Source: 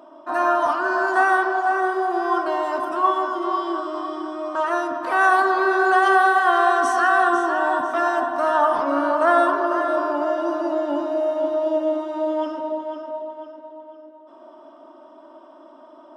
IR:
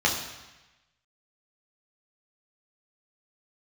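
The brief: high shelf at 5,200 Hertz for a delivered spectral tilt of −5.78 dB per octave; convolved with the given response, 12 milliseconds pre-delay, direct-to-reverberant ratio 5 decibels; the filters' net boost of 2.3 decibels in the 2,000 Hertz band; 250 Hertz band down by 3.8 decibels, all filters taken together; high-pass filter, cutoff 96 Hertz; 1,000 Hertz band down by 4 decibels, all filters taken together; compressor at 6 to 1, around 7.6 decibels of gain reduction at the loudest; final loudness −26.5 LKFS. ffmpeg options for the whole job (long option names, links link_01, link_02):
-filter_complex "[0:a]highpass=96,equalizer=frequency=250:width_type=o:gain=-5.5,equalizer=frequency=1000:width_type=o:gain=-7.5,equalizer=frequency=2000:width_type=o:gain=8.5,highshelf=frequency=5200:gain=-3.5,acompressor=threshold=-22dB:ratio=6,asplit=2[link_01][link_02];[1:a]atrim=start_sample=2205,adelay=12[link_03];[link_02][link_03]afir=irnorm=-1:irlink=0,volume=-19.5dB[link_04];[link_01][link_04]amix=inputs=2:normalize=0,volume=-1.5dB"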